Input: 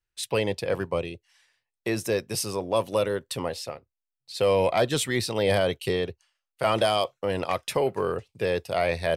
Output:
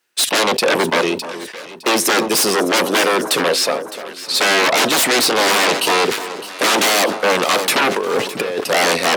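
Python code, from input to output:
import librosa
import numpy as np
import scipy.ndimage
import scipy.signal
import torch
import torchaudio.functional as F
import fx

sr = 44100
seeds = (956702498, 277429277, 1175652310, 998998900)

y = fx.over_compress(x, sr, threshold_db=-34.0, ratio=-0.5, at=(7.96, 8.61))
y = fx.fold_sine(y, sr, drive_db=19, ceiling_db=-9.0)
y = scipy.signal.sosfilt(scipy.signal.butter(4, 230.0, 'highpass', fs=sr, output='sos'), y)
y = fx.echo_alternate(y, sr, ms=305, hz=1300.0, feedback_pct=67, wet_db=-11.5)
y = fx.sustainer(y, sr, db_per_s=95.0)
y = F.gain(torch.from_numpy(y), -2.0).numpy()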